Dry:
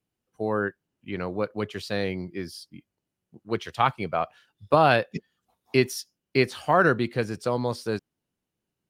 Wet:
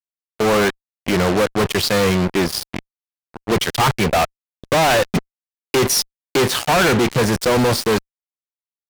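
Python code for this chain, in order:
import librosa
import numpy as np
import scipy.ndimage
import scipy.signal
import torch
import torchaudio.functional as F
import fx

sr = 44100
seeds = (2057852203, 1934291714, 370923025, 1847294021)

y = fx.fuzz(x, sr, gain_db=43.0, gate_db=-40.0)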